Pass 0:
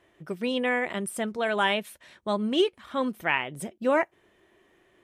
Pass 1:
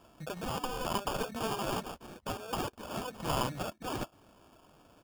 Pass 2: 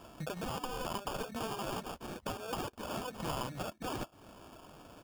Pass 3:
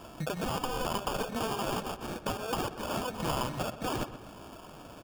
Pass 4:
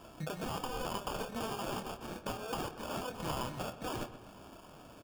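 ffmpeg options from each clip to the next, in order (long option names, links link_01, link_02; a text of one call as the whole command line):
ffmpeg -i in.wav -af "aecho=1:1:1.3:0.89,afftfilt=real='re*lt(hypot(re,im),0.126)':imag='im*lt(hypot(re,im),0.126)':win_size=1024:overlap=0.75,acrusher=samples=22:mix=1:aa=0.000001,volume=2.5dB" out.wav
ffmpeg -i in.wav -af "acompressor=threshold=-45dB:ratio=3,volume=6.5dB" out.wav
ffmpeg -i in.wav -filter_complex "[0:a]asplit=2[link_01][link_02];[link_02]adelay=126,lowpass=frequency=3500:poles=1,volume=-12dB,asplit=2[link_03][link_04];[link_04]adelay=126,lowpass=frequency=3500:poles=1,volume=0.48,asplit=2[link_05][link_06];[link_06]adelay=126,lowpass=frequency=3500:poles=1,volume=0.48,asplit=2[link_07][link_08];[link_08]adelay=126,lowpass=frequency=3500:poles=1,volume=0.48,asplit=2[link_09][link_10];[link_10]adelay=126,lowpass=frequency=3500:poles=1,volume=0.48[link_11];[link_01][link_03][link_05][link_07][link_09][link_11]amix=inputs=6:normalize=0,volume=5.5dB" out.wav
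ffmpeg -i in.wav -filter_complex "[0:a]asplit=2[link_01][link_02];[link_02]adelay=26,volume=-8.5dB[link_03];[link_01][link_03]amix=inputs=2:normalize=0,volume=-6dB" out.wav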